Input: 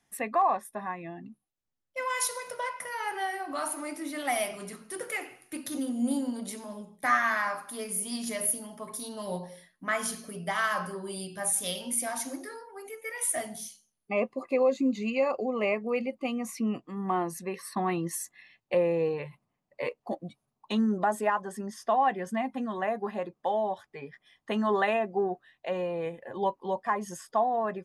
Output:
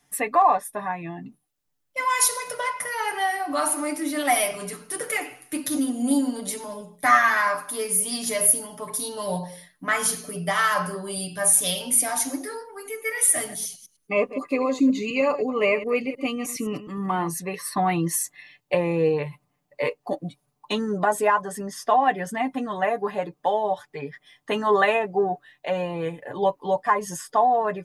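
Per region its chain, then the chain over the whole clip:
12.61–17.30 s: chunks repeated in reverse 104 ms, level -13.5 dB + peaking EQ 720 Hz -8.5 dB 0.36 oct
whole clip: treble shelf 7.5 kHz +5 dB; comb 6.8 ms, depth 65%; trim +5.5 dB

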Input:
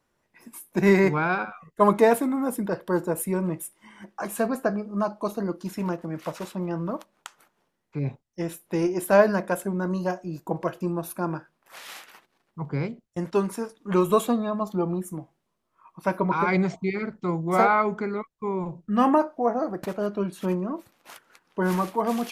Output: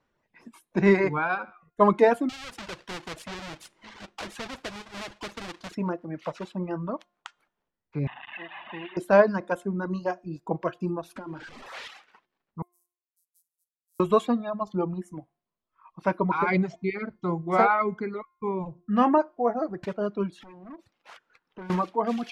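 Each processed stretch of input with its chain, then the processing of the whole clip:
2.29–5.75 s: square wave that keeps the level + compression 2:1, threshold -26 dBFS + spectrum-flattening compressor 2:1
8.07–8.97 s: one-bit delta coder 16 kbps, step -29 dBFS + high-pass 1.3 kHz 6 dB/octave + comb 1.1 ms, depth 69%
11.16–11.88 s: jump at every zero crossing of -36 dBFS + peaking EQ 330 Hz +4.5 dB 1 oct + compression 5:1, threshold -31 dBFS
12.62–14.00 s: sorted samples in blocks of 256 samples + inverse Chebyshev high-pass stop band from 2.6 kHz, stop band 80 dB + comb 4.3 ms, depth 80%
20.32–21.70 s: compression 2.5:1, threshold -39 dBFS + hard clipper -36.5 dBFS
whole clip: de-hum 352.8 Hz, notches 30; reverb removal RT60 1.3 s; low-pass 4.3 kHz 12 dB/octave

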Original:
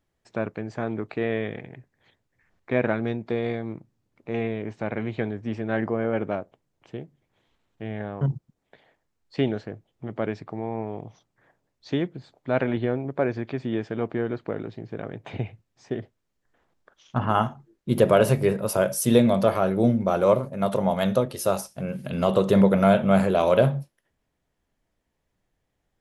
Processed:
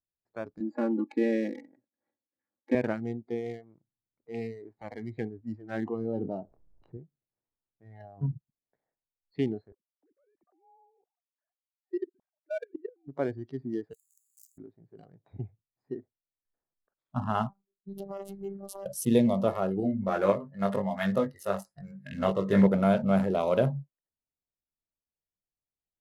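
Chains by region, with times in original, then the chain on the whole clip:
0.60–2.75 s: high-pass 300 Hz + bass shelf 390 Hz +12 dB + comb 3.6 ms, depth 90%
5.98–6.97 s: tape spacing loss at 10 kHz 39 dB + doubling 26 ms -12 dB + level flattener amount 50%
9.72–13.08 s: formants replaced by sine waves + level held to a coarse grid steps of 23 dB
13.93–14.58 s: one-bit comparator + inverse Chebyshev high-pass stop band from 2.2 kHz, stop band 60 dB + decay stretcher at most 22 dB/s
17.49–18.86 s: compression 4:1, threshold -25 dBFS + robot voice 197 Hz + loudspeaker Doppler distortion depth 0.35 ms
19.80–22.67 s: tremolo saw up 2 Hz, depth 50% + peaking EQ 1.8 kHz +13 dB 0.66 oct + doubling 20 ms -4 dB
whole clip: local Wiener filter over 15 samples; spectral noise reduction 17 dB; dynamic bell 260 Hz, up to +4 dB, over -30 dBFS, Q 0.88; trim -7.5 dB

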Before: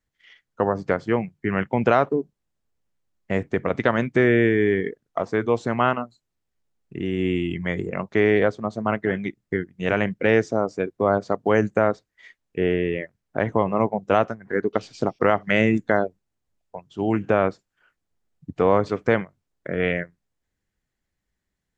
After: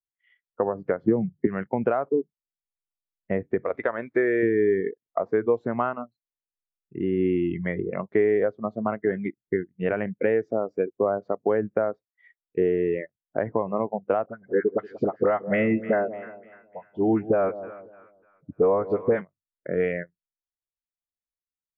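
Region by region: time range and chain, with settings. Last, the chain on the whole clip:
1.04–1.47 s: high-pass 160 Hz 6 dB/octave + tilt EQ -4 dB/octave + three bands compressed up and down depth 100%
3.64–4.43 s: companded quantiser 6-bit + peaking EQ 160 Hz -11.5 dB 1.6 oct + band-stop 2.9 kHz, Q 16
14.26–19.21 s: phase dispersion highs, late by 42 ms, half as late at 970 Hz + two-band feedback delay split 1 kHz, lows 183 ms, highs 298 ms, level -14 dB
whole clip: tone controls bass -4 dB, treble -13 dB; compression 6:1, threshold -22 dBFS; spectral contrast expander 1.5:1

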